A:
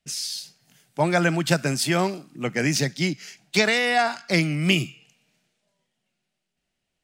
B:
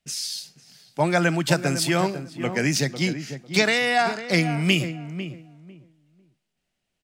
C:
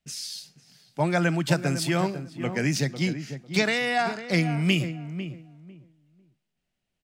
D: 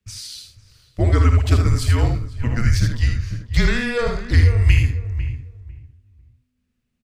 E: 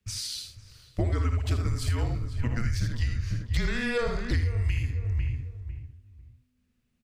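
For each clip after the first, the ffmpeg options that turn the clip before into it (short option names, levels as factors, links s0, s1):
-filter_complex "[0:a]asplit=2[s0][s1];[s1]adelay=499,lowpass=f=1200:p=1,volume=0.335,asplit=2[s2][s3];[s3]adelay=499,lowpass=f=1200:p=1,volume=0.21,asplit=2[s4][s5];[s5]adelay=499,lowpass=f=1200:p=1,volume=0.21[s6];[s0][s2][s4][s6]amix=inputs=4:normalize=0"
-af "bass=f=250:g=4,treble=f=4000:g=-2,volume=0.631"
-af "afreqshift=-250,lowshelf=f=220:g=10.5,aecho=1:1:56|79:0.335|0.473"
-af "acompressor=threshold=0.0631:ratio=6"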